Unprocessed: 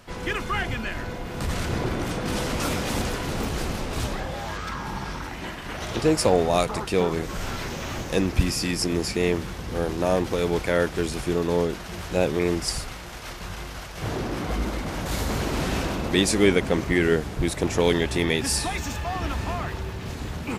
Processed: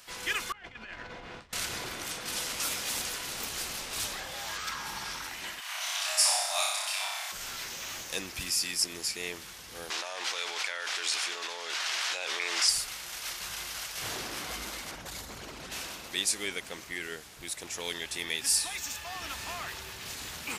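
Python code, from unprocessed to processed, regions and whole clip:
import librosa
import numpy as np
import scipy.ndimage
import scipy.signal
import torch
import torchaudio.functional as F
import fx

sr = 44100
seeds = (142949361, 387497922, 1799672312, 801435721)

y = fx.chain(x, sr, fx.over_compress(threshold_db=-32.0, ratio=-0.5),
    fx.spacing_loss(db_at_10k=28), at=(0.52, 1.53))
y = fx.chain(y, sr, fx.cheby1_highpass(hz=610.0, order=8),
    fx.room_flutter(wall_m=5.2, rt60_s=1.1), at=(5.6, 7.32))
y = fx.chain(y, sr, fx.bandpass_edges(low_hz=780.0, high_hz=5500.0),
    fx.env_flatten(amount_pct=100), at=(9.9, 12.69))
y = fx.chain(y, sr, fx.envelope_sharpen(power=1.5),
    fx.env_flatten(amount_pct=50), at=(14.91, 15.72))
y = fx.high_shelf(y, sr, hz=6100.0, db=-7.0)
y = fx.rider(y, sr, range_db=10, speed_s=2.0)
y = librosa.effects.preemphasis(y, coef=0.97, zi=[0.0])
y = y * 10.0 ** (5.0 / 20.0)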